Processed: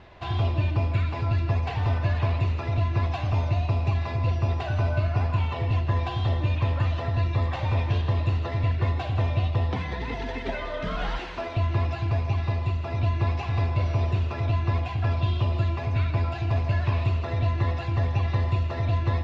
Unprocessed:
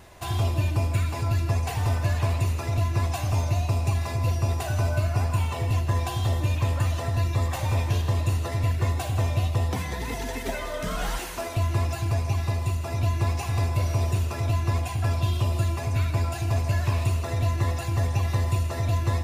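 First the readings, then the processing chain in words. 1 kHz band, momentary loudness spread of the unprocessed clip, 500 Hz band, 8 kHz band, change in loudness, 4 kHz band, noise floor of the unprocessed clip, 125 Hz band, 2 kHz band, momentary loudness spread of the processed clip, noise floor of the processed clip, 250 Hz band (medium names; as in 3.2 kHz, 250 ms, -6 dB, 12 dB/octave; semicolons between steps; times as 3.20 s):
0.0 dB, 3 LU, 0.0 dB, under -15 dB, 0.0 dB, -2.0 dB, -32 dBFS, 0.0 dB, 0.0 dB, 3 LU, -33 dBFS, 0.0 dB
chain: low-pass 4 kHz 24 dB/octave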